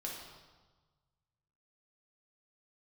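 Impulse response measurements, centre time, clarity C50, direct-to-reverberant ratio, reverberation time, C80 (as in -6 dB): 63 ms, 2.0 dB, -2.5 dB, 1.3 s, 4.0 dB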